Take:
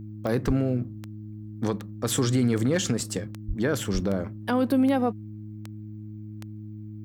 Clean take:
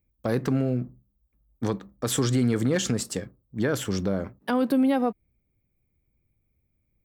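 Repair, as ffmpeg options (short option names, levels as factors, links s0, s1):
-filter_complex "[0:a]adeclick=t=4,bandreject=f=106.5:t=h:w=4,bandreject=f=213:t=h:w=4,bandreject=f=319.5:t=h:w=4,asplit=3[s0][s1][s2];[s0]afade=t=out:st=0.46:d=0.02[s3];[s1]highpass=f=140:w=0.5412,highpass=f=140:w=1.3066,afade=t=in:st=0.46:d=0.02,afade=t=out:st=0.58:d=0.02[s4];[s2]afade=t=in:st=0.58:d=0.02[s5];[s3][s4][s5]amix=inputs=3:normalize=0,asplit=3[s6][s7][s8];[s6]afade=t=out:st=3.47:d=0.02[s9];[s7]highpass=f=140:w=0.5412,highpass=f=140:w=1.3066,afade=t=in:st=3.47:d=0.02,afade=t=out:st=3.59:d=0.02[s10];[s8]afade=t=in:st=3.59:d=0.02[s11];[s9][s10][s11]amix=inputs=3:normalize=0,asplit=3[s12][s13][s14];[s12]afade=t=out:st=3.93:d=0.02[s15];[s13]highpass=f=140:w=0.5412,highpass=f=140:w=1.3066,afade=t=in:st=3.93:d=0.02,afade=t=out:st=4.05:d=0.02[s16];[s14]afade=t=in:st=4.05:d=0.02[s17];[s15][s16][s17]amix=inputs=3:normalize=0,agate=range=0.0891:threshold=0.0282"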